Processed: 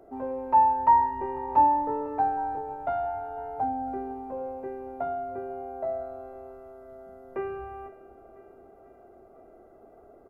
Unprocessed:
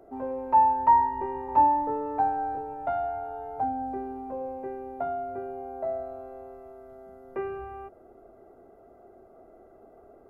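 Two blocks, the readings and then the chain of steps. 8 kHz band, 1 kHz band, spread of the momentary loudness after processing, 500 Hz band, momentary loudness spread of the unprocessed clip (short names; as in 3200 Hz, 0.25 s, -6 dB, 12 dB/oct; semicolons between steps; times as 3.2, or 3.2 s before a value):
n/a, 0.0 dB, 22 LU, 0.0 dB, 21 LU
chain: feedback echo 0.499 s, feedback 59%, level -19 dB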